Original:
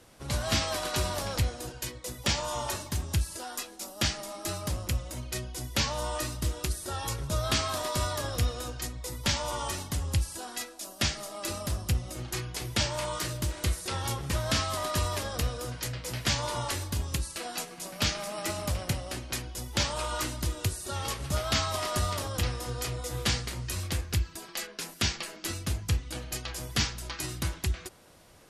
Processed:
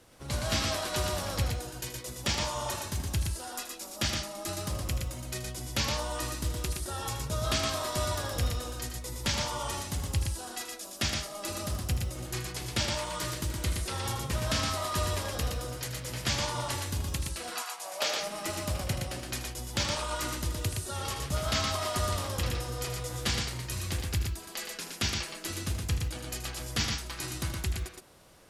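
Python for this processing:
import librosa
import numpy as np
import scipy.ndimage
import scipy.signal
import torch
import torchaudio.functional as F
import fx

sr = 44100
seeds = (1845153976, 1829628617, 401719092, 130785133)

y = fx.quant_companded(x, sr, bits=8)
y = fx.highpass_res(y, sr, hz=fx.line((17.49, 1200.0), (18.19, 480.0)), q=2.8, at=(17.49, 18.19), fade=0.02)
y = fx.echo_multitap(y, sr, ms=(79, 118), db=(-11.0, -4.0))
y = y * librosa.db_to_amplitude(-2.5)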